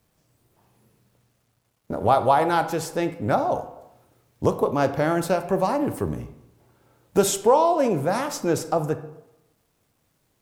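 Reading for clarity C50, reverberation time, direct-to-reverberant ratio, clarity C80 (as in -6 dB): 12.0 dB, 0.90 s, 9.0 dB, 14.5 dB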